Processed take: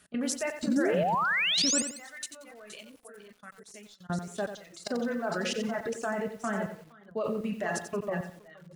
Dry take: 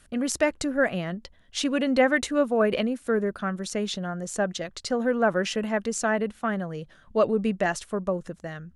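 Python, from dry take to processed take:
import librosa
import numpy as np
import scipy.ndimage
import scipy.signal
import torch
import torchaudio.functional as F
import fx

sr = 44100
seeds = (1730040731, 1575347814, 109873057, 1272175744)

y = scipy.signal.sosfilt(scipy.signal.butter(4, 61.0, 'highpass', fs=sr, output='sos'), x)
y = fx.low_shelf(y, sr, hz=100.0, db=-7.0)
y = fx.comb_fb(y, sr, f0_hz=140.0, decay_s=1.9, harmonics='all', damping=0.0, mix_pct=40)
y = y + 10.0 ** (-10.0 / 20.0) * np.pad(y, (int(469 * sr / 1000.0), 0))[:len(y)]
y = fx.room_shoebox(y, sr, seeds[0], volume_m3=490.0, walls='furnished', distance_m=1.4)
y = fx.level_steps(y, sr, step_db=16)
y = fx.pre_emphasis(y, sr, coefficient=0.9, at=(1.82, 4.1))
y = fx.dereverb_blind(y, sr, rt60_s=1.5)
y = fx.spec_paint(y, sr, seeds[1], shape='rise', start_s=0.67, length_s=1.14, low_hz=200.0, high_hz=8800.0, level_db=-30.0)
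y = fx.echo_crushed(y, sr, ms=90, feedback_pct=35, bits=9, wet_db=-9.0)
y = y * 10.0 ** (2.5 / 20.0)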